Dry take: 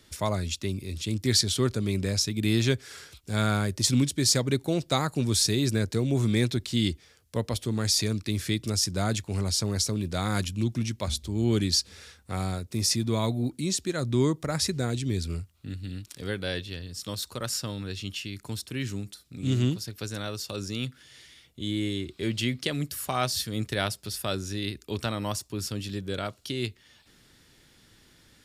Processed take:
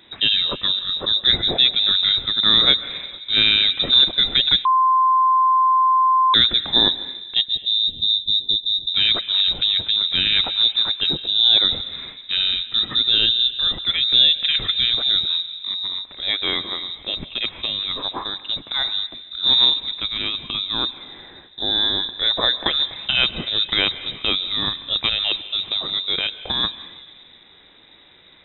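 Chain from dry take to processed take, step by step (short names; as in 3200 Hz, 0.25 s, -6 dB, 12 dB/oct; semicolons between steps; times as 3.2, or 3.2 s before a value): 7.46–8.89 inverse Chebyshev band-stop 530–2600 Hz, stop band 40 dB; plate-style reverb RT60 1.9 s, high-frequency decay 0.45×, pre-delay 0.12 s, DRR 14 dB; inverted band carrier 3800 Hz; 4.65–6.34 bleep 1040 Hz -21 dBFS; gain +8.5 dB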